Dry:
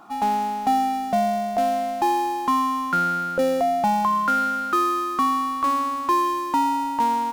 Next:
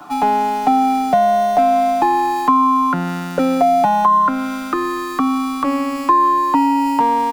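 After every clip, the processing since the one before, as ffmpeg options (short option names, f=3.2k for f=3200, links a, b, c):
-filter_complex "[0:a]aecho=1:1:6.8:0.86,acrossover=split=130|2900[a][b][c];[c]alimiter=level_in=11dB:limit=-24dB:level=0:latency=1,volume=-11dB[d];[a][b][d]amix=inputs=3:normalize=0,acrossover=split=150|1200[e][f][g];[e]acompressor=threshold=-49dB:ratio=4[h];[f]acompressor=threshold=-20dB:ratio=4[i];[g]acompressor=threshold=-36dB:ratio=4[j];[h][i][j]amix=inputs=3:normalize=0,volume=8.5dB"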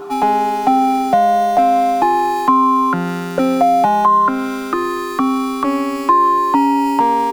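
-af "aeval=exprs='val(0)+0.0355*sin(2*PI*400*n/s)':c=same,volume=1dB"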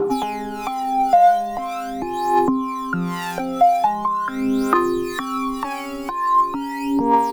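-filter_complex "[0:a]acompressor=threshold=-19dB:ratio=6,acrossover=split=610[a][b];[a]aeval=exprs='val(0)*(1-0.7/2+0.7/2*cos(2*PI*2*n/s))':c=same[c];[b]aeval=exprs='val(0)*(1-0.7/2-0.7/2*cos(2*PI*2*n/s))':c=same[d];[c][d]amix=inputs=2:normalize=0,aphaser=in_gain=1:out_gain=1:delay=1.5:decay=0.77:speed=0.42:type=triangular,volume=1dB"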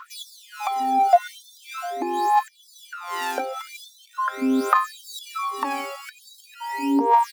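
-af "afftfilt=real='re*gte(b*sr/1024,220*pow(3500/220,0.5+0.5*sin(2*PI*0.83*pts/sr)))':imag='im*gte(b*sr/1024,220*pow(3500/220,0.5+0.5*sin(2*PI*0.83*pts/sr)))':win_size=1024:overlap=0.75"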